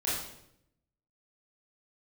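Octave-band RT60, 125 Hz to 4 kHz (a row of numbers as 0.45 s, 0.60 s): 1.1 s, 1.0 s, 0.85 s, 0.65 s, 0.65 s, 0.65 s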